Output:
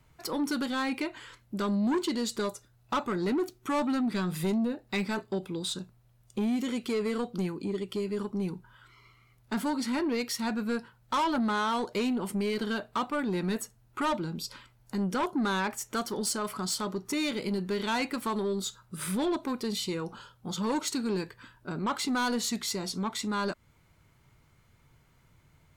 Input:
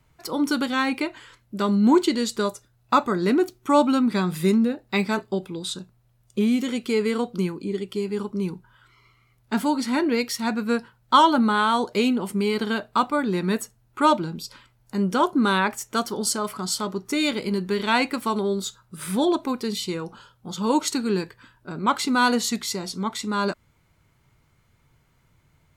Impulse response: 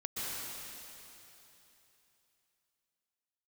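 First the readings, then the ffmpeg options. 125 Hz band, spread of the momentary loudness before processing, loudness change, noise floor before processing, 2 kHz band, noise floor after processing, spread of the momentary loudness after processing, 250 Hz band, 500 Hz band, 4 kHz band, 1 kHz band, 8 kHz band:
-6.0 dB, 11 LU, -7.5 dB, -63 dBFS, -7.5 dB, -64 dBFS, 8 LU, -7.0 dB, -7.5 dB, -6.5 dB, -9.5 dB, -5.0 dB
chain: -filter_complex "[0:a]asplit=2[a][b];[b]acompressor=threshold=-31dB:ratio=6,volume=1.5dB[c];[a][c]amix=inputs=2:normalize=0,asoftclip=type=tanh:threshold=-16.5dB,volume=-7dB"

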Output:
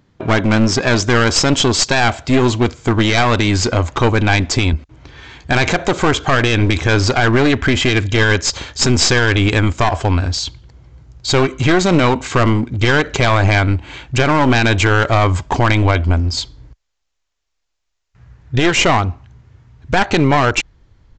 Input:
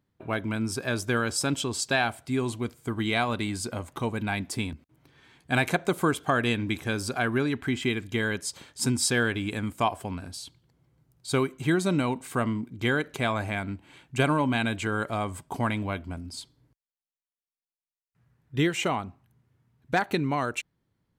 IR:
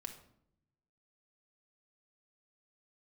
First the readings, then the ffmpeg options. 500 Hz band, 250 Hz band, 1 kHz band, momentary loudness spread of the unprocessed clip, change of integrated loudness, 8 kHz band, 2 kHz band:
+13.0 dB, +12.0 dB, +13.0 dB, 11 LU, +13.5 dB, +12.5 dB, +13.0 dB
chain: -af "acontrast=87,asubboost=boost=11.5:cutoff=51,aresample=16000,aeval=exprs='clip(val(0),-1,0.0398)':c=same,aresample=44100,alimiter=level_in=13.5dB:limit=-1dB:release=50:level=0:latency=1,volume=-1dB"

